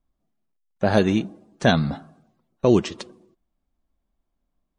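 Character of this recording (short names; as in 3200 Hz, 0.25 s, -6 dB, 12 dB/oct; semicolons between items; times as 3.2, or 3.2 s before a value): noise floor -77 dBFS; spectral tilt -5.5 dB/oct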